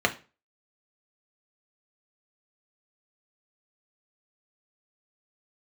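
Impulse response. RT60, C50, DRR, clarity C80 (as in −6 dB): 0.35 s, 16.0 dB, 2.5 dB, 22.0 dB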